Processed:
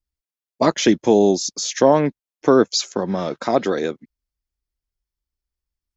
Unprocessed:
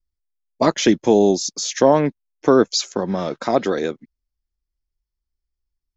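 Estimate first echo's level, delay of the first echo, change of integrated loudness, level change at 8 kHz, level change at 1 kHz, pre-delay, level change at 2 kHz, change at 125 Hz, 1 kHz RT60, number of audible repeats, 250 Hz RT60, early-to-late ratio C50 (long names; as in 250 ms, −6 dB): no echo audible, no echo audible, 0.0 dB, can't be measured, 0.0 dB, no reverb audible, 0.0 dB, −0.5 dB, no reverb audible, no echo audible, no reverb audible, no reverb audible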